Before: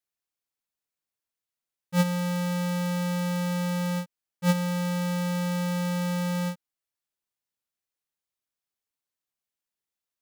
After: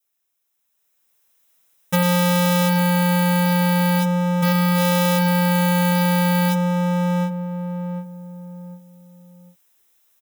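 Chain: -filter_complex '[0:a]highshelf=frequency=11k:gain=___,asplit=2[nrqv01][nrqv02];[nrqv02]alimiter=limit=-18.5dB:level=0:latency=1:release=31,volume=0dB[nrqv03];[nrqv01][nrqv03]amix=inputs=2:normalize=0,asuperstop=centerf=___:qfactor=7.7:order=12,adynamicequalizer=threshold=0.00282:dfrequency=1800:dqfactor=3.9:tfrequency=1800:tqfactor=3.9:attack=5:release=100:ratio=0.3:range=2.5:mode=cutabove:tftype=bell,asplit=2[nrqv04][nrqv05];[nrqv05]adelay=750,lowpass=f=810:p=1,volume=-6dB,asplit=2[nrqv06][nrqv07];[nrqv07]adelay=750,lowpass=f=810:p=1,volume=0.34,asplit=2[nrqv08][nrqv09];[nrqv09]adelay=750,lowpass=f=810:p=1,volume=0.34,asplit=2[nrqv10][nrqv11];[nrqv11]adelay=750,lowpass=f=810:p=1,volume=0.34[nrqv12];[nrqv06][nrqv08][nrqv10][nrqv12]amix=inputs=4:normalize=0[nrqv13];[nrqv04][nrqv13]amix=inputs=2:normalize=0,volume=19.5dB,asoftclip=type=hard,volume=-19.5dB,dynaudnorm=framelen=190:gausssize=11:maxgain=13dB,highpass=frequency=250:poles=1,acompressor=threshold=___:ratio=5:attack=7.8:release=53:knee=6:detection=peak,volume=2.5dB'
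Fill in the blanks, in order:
11, 4500, -19dB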